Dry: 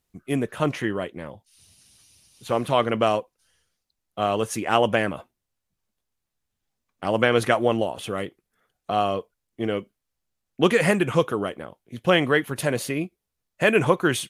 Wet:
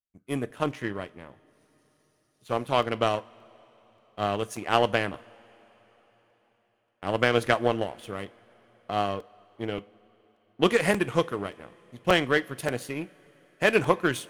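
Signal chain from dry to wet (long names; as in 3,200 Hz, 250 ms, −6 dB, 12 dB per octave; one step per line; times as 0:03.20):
power curve on the samples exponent 1.4
coupled-rooms reverb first 0.27 s, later 4.5 s, from −22 dB, DRR 14.5 dB
regular buffer underruns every 0.58 s, samples 128, repeat, from 0:00.50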